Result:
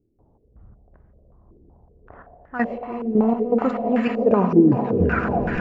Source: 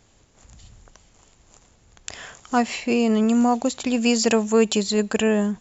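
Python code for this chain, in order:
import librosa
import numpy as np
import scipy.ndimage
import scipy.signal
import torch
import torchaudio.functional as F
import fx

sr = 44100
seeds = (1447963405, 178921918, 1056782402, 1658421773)

p1 = fx.tape_stop_end(x, sr, length_s=1.35)
p2 = fx.env_lowpass(p1, sr, base_hz=450.0, full_db=-18.0)
p3 = fx.transient(p2, sr, attack_db=-3, sustain_db=3)
p4 = fx.over_compress(p3, sr, threshold_db=-19.0, ratio=-1.0)
p5 = fx.step_gate(p4, sr, bpm=81, pattern='.x.x.x.xxx.x..x.', floor_db=-12.0, edge_ms=4.5)
p6 = p5 + fx.echo_swell(p5, sr, ms=115, loudest=8, wet_db=-13, dry=0)
p7 = fx.rev_spring(p6, sr, rt60_s=2.9, pass_ms=(43, 58), chirp_ms=20, drr_db=8.0)
y = fx.filter_held_lowpass(p7, sr, hz=5.3, low_hz=360.0, high_hz=1700.0)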